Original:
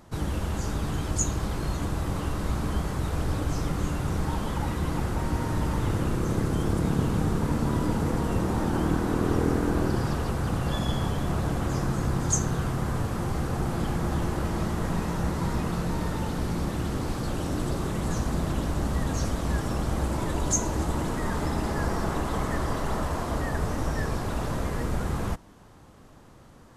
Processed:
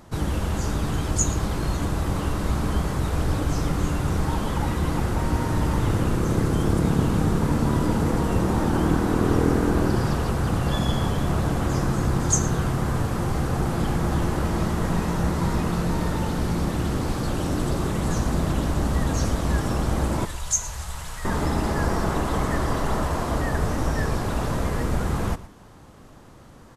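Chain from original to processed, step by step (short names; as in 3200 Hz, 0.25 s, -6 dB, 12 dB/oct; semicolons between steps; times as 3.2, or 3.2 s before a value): 20.25–21.25 passive tone stack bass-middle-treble 10-0-10; echo 0.116 s -17 dB; gain +4 dB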